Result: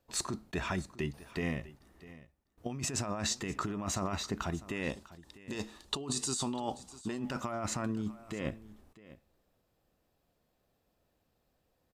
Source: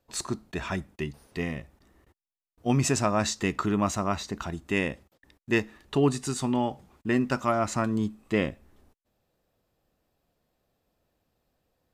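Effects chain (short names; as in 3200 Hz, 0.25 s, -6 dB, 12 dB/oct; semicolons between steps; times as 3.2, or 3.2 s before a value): 4.89–7.2 graphic EQ 125/1000/2000/4000/8000 Hz -4/+4/-7/+9/+9 dB; negative-ratio compressor -30 dBFS, ratio -1; echo 0.649 s -18 dB; gain -5 dB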